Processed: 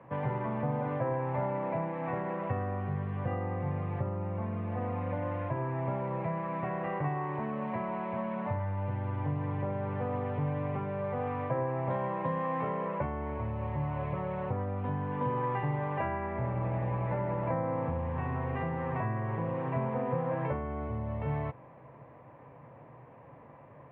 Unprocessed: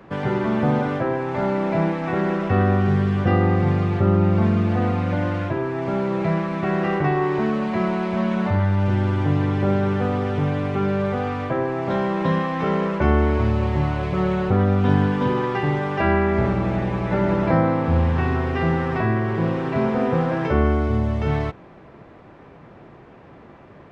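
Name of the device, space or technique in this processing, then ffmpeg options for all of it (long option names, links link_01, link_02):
bass amplifier: -af "acompressor=threshold=-21dB:ratio=6,highpass=86,equalizer=frequency=130:width_type=q:width=4:gain=9,equalizer=frequency=190:width_type=q:width=4:gain=-7,equalizer=frequency=370:width_type=q:width=4:gain=-9,equalizer=frequency=530:width_type=q:width=4:gain=6,equalizer=frequency=990:width_type=q:width=4:gain=7,equalizer=frequency=1400:width_type=q:width=4:gain=-7,lowpass=frequency=2400:width=0.5412,lowpass=frequency=2400:width=1.3066,volume=-8dB"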